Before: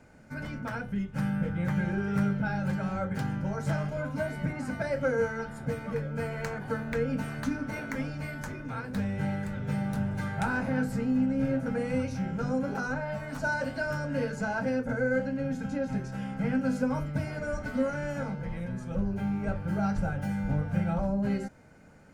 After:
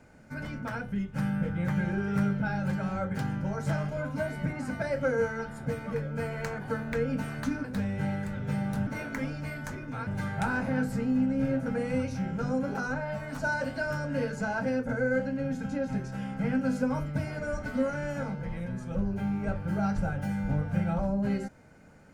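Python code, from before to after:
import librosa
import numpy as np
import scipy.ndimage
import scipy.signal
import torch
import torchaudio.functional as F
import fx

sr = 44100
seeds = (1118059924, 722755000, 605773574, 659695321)

y = fx.edit(x, sr, fx.move(start_s=7.64, length_s=1.2, to_s=10.07), tone=tone)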